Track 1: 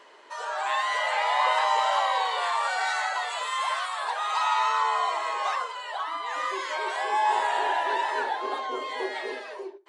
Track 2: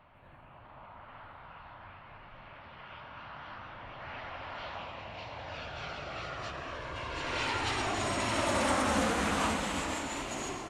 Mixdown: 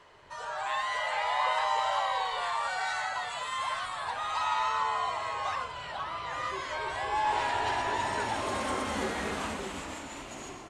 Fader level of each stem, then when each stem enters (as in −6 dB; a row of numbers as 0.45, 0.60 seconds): −5.0, −5.0 decibels; 0.00, 0.00 seconds